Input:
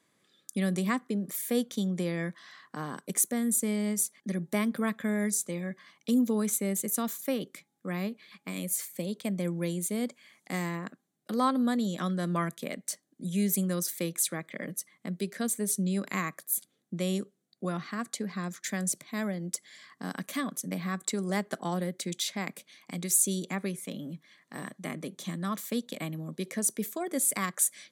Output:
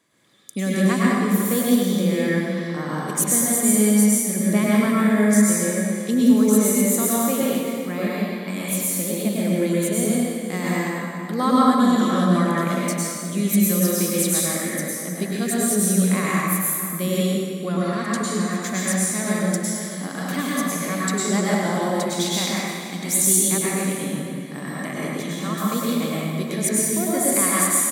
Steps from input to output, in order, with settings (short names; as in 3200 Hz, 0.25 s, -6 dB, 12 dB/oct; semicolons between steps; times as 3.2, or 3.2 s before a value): outdoor echo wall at 84 m, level -12 dB; plate-style reverb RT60 1.9 s, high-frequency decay 0.8×, pre-delay 90 ms, DRR -6.5 dB; gain +3.5 dB